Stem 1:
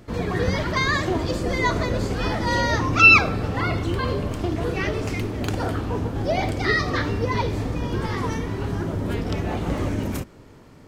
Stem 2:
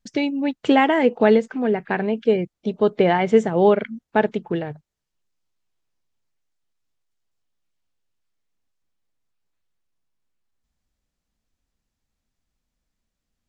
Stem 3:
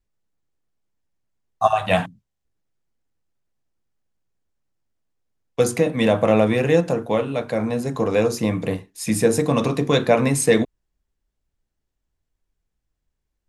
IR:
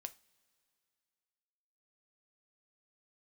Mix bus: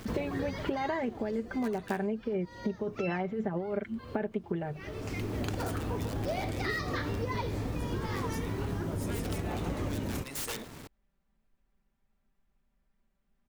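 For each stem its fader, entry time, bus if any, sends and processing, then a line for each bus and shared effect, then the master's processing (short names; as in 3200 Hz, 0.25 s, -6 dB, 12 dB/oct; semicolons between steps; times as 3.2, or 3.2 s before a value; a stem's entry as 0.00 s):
0.0 dB, 0.00 s, no send, bit-crush 8-bit; auto duck -19 dB, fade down 2.00 s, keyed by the second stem
-0.5 dB, 0.00 s, no send, LPF 2100 Hz 12 dB/oct; comb 5.1 ms, depth 72%; negative-ratio compressor -17 dBFS, ratio -1
-18.0 dB, 0.00 s, no send, tilt +3.5 dB/oct; wrapped overs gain 12 dB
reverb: off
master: compressor 5:1, threshold -31 dBFS, peak gain reduction 16.5 dB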